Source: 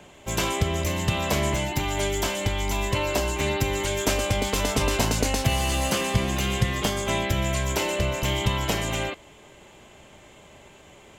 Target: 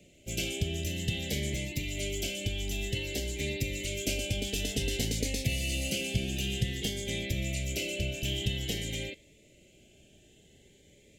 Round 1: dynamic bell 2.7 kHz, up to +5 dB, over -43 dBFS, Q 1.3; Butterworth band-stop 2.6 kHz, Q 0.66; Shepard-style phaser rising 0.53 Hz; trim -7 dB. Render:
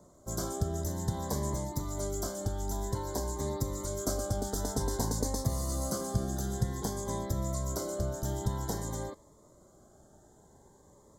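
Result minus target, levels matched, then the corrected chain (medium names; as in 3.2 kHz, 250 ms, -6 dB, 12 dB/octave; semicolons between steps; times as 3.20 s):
1 kHz band +17.5 dB
dynamic bell 2.7 kHz, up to +5 dB, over -43 dBFS, Q 1.3; Butterworth band-stop 1.1 kHz, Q 0.66; Shepard-style phaser rising 0.53 Hz; trim -7 dB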